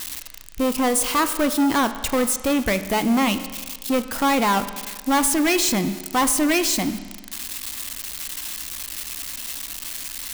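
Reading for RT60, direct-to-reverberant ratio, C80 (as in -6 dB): 1.5 s, 10.5 dB, 13.5 dB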